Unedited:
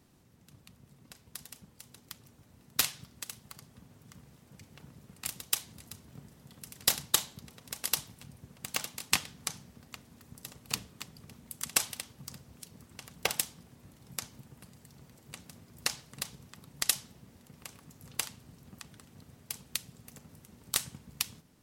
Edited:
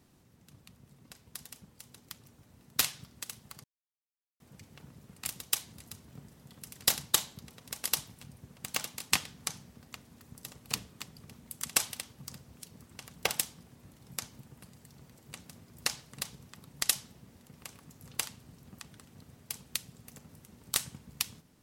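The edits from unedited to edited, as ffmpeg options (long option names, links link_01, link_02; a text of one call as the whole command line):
ffmpeg -i in.wav -filter_complex "[0:a]asplit=3[link_01][link_02][link_03];[link_01]atrim=end=3.64,asetpts=PTS-STARTPTS,afade=type=out:start_time=3.636:duration=0.004:curve=hsin[link_04];[link_02]atrim=start=3.64:end=4.4,asetpts=PTS-STARTPTS,volume=0[link_05];[link_03]atrim=start=4.4,asetpts=PTS-STARTPTS,afade=type=in:duration=0.004:curve=hsin[link_06];[link_04][link_05][link_06]concat=n=3:v=0:a=1" out.wav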